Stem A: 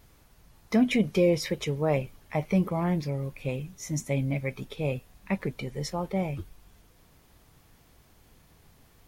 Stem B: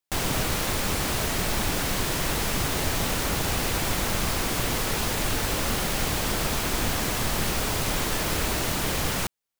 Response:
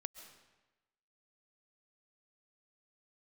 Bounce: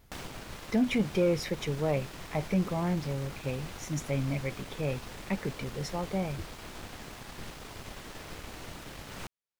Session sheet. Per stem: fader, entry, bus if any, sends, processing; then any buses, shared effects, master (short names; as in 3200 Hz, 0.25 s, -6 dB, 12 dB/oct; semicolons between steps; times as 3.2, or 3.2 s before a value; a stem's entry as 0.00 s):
-2.5 dB, 0.00 s, no send, high shelf 11000 Hz +12 dB
-3.5 dB, 0.00 s, no send, one-sided fold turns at -26 dBFS; auto duck -11 dB, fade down 0.30 s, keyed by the first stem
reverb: off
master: high shelf 7700 Hz -11.5 dB; soft clip -16.5 dBFS, distortion -22 dB